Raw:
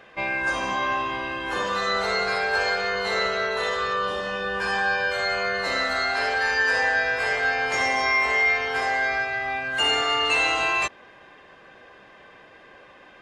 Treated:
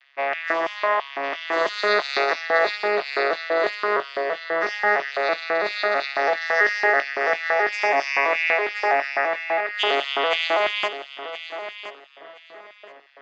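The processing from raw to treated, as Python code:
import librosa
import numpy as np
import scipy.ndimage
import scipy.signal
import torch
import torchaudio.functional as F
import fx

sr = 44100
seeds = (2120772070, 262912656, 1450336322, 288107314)

p1 = fx.vocoder_arp(x, sr, chord='minor triad', root=49, every_ms=330)
p2 = fx.high_shelf(p1, sr, hz=3300.0, db=9.5, at=(1.23, 2.33))
p3 = fx.filter_lfo_highpass(p2, sr, shape='square', hz=3.0, low_hz=420.0, high_hz=3100.0, q=1.4)
p4 = fx.cabinet(p3, sr, low_hz=170.0, low_slope=24, high_hz=6300.0, hz=(220.0, 460.0, 660.0, 1200.0, 1900.0, 5000.0), db=(-5, -4, 7, 5, 7, 3))
y = p4 + fx.echo_feedback(p4, sr, ms=1021, feedback_pct=21, wet_db=-12, dry=0)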